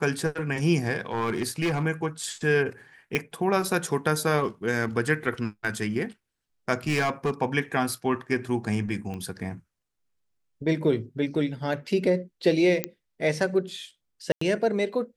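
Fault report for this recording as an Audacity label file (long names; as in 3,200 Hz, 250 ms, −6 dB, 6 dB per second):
1.120000	1.830000	clipping −21.5 dBFS
3.150000	3.150000	click −11 dBFS
6.870000	7.310000	clipping −20 dBFS
9.140000	9.140000	click −24 dBFS
12.840000	12.840000	click −9 dBFS
14.320000	14.410000	drop-out 94 ms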